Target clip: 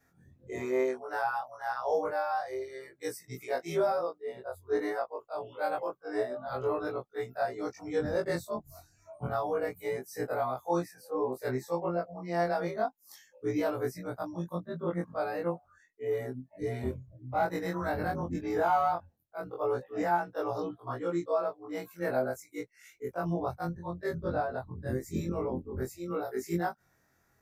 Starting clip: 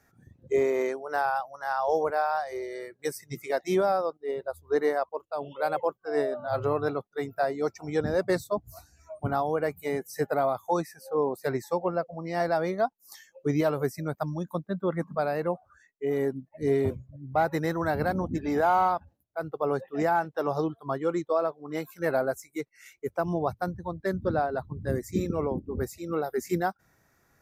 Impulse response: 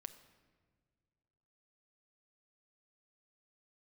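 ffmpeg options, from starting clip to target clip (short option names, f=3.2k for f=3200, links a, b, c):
-af "afftfilt=real='re':imag='-im':win_size=2048:overlap=0.75"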